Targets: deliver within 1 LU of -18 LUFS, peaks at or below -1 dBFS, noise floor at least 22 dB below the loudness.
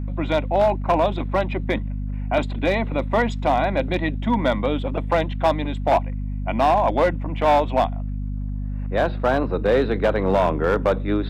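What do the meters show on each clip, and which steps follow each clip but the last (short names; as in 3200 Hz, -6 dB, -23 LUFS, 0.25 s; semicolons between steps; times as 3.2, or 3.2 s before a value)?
clipped 1.1%; flat tops at -11.5 dBFS; hum 50 Hz; harmonics up to 250 Hz; hum level -24 dBFS; loudness -22.0 LUFS; peak -11.5 dBFS; loudness target -18.0 LUFS
-> clip repair -11.5 dBFS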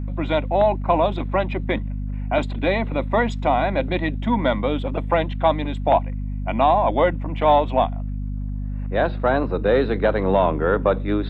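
clipped 0.0%; hum 50 Hz; harmonics up to 250 Hz; hum level -24 dBFS
-> de-hum 50 Hz, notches 5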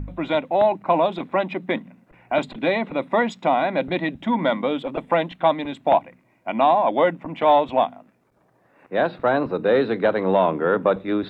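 hum none; loudness -21.5 LUFS; peak -5.5 dBFS; loudness target -18.0 LUFS
-> gain +3.5 dB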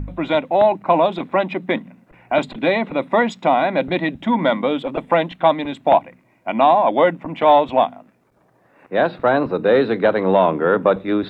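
loudness -18.0 LUFS; peak -2.0 dBFS; noise floor -58 dBFS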